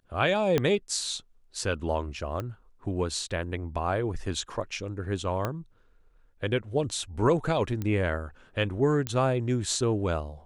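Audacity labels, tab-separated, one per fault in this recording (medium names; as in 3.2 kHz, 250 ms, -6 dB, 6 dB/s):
0.580000	0.580000	pop -11 dBFS
2.400000	2.400000	pop -20 dBFS
5.450000	5.450000	pop -15 dBFS
7.820000	7.820000	pop -19 dBFS
9.070000	9.070000	pop -13 dBFS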